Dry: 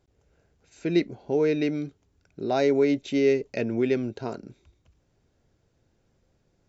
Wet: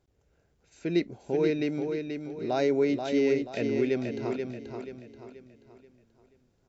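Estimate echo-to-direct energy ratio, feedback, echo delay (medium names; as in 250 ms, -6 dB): -5.0 dB, 40%, 482 ms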